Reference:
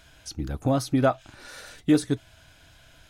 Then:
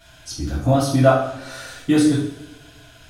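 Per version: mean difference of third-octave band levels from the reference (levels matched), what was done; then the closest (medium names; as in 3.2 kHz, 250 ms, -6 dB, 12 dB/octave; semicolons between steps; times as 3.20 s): 5.5 dB: two-slope reverb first 0.57 s, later 1.7 s, DRR -10 dB; trim -3.5 dB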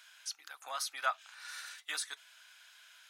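13.5 dB: high-pass 1.1 kHz 24 dB/octave; trim -1.5 dB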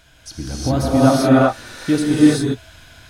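9.0 dB: gated-style reverb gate 420 ms rising, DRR -7.5 dB; trim +2 dB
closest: first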